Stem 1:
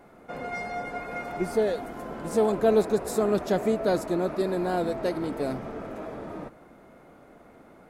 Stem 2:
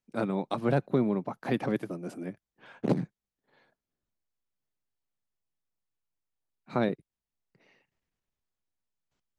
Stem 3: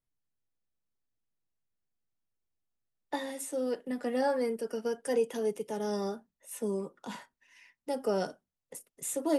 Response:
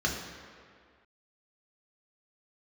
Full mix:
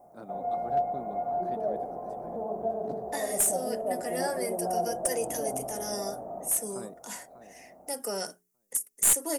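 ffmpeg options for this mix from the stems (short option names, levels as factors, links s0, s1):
-filter_complex "[0:a]alimiter=limit=0.0891:level=0:latency=1:release=273,lowpass=f=710:t=q:w=5.9,volume=0.447,asplit=2[s0][s1];[s1]volume=0.237[s2];[1:a]equalizer=f=2500:t=o:w=1.1:g=-13.5,volume=0.251,asplit=2[s3][s4];[s4]volume=0.224[s5];[2:a]aexciter=amount=8.5:drive=4.2:freq=5400,equalizer=f=2000:w=2.1:g=6,bandreject=f=60:t=h:w=6,bandreject=f=120:t=h:w=6,bandreject=f=180:t=h:w=6,bandreject=f=240:t=h:w=6,bandreject=f=300:t=h:w=6,bandreject=f=360:t=h:w=6,bandreject=f=420:t=h:w=6,volume=0.794[s6];[3:a]atrim=start_sample=2205[s7];[s2][s7]afir=irnorm=-1:irlink=0[s8];[s5]aecho=0:1:596|1192|1788|2384:1|0.22|0.0484|0.0106[s9];[s0][s3][s6][s8][s9]amix=inputs=5:normalize=0,lowshelf=f=370:g=-6.5,aeval=exprs='clip(val(0),-1,0.106)':c=same"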